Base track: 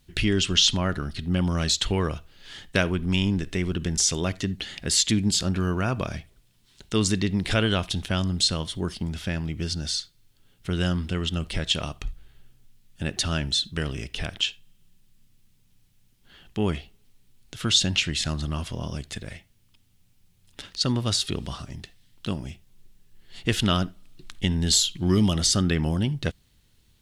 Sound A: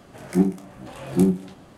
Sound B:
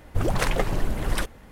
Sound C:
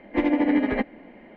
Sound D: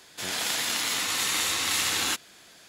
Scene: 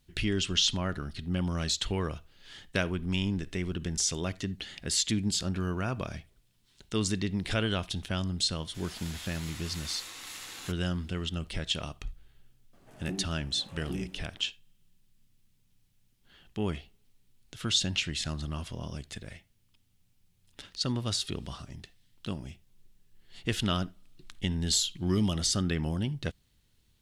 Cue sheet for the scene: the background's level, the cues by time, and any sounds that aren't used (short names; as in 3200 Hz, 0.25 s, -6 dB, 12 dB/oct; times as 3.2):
base track -6.5 dB
8.56 add D -17 dB
12.73 add A -14 dB + limiter -14.5 dBFS
not used: B, C